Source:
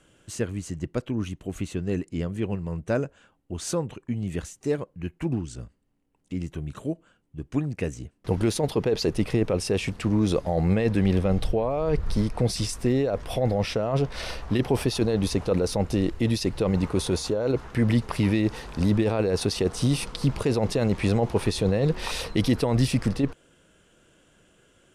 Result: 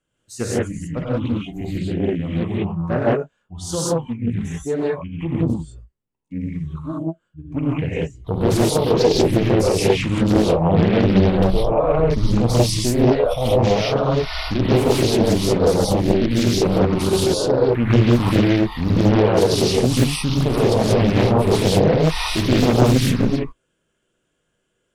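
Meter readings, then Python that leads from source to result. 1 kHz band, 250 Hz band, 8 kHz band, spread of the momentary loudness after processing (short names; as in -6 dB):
+10.5 dB, +7.0 dB, +7.0 dB, 11 LU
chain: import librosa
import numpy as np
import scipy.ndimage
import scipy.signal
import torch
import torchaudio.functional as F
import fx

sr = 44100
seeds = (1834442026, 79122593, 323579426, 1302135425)

y = fx.noise_reduce_blind(x, sr, reduce_db=20)
y = fx.rev_gated(y, sr, seeds[0], gate_ms=210, shape='rising', drr_db=-7.0)
y = fx.doppler_dist(y, sr, depth_ms=0.99)
y = F.gain(torch.from_numpy(y), 1.0).numpy()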